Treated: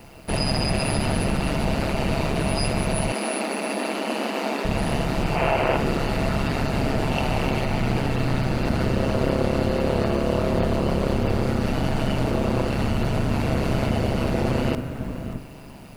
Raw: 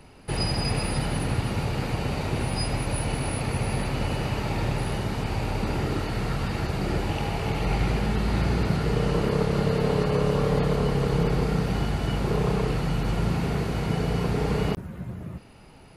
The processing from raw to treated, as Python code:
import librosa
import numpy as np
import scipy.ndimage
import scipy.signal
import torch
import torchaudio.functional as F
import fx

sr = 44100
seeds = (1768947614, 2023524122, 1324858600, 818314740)

p1 = fx.spec_box(x, sr, start_s=5.36, length_s=0.4, low_hz=400.0, high_hz=3200.0, gain_db=10)
p2 = fx.over_compress(p1, sr, threshold_db=-27.0, ratio=-1.0)
p3 = p1 + F.gain(torch.from_numpy(p2), 0.0).numpy()
p4 = p3 * np.sin(2.0 * np.pi * 69.0 * np.arange(len(p3)) / sr)
p5 = fx.small_body(p4, sr, hz=(650.0, 2700.0), ring_ms=85, db=10)
p6 = p5 + fx.echo_single(p5, sr, ms=579, db=-16.5, dry=0)
p7 = fx.rev_spring(p6, sr, rt60_s=2.4, pass_ms=(40,), chirp_ms=45, drr_db=11.0)
p8 = fx.quant_dither(p7, sr, seeds[0], bits=10, dither='triangular')
y = fx.brickwall_highpass(p8, sr, low_hz=200.0, at=(3.12, 4.65))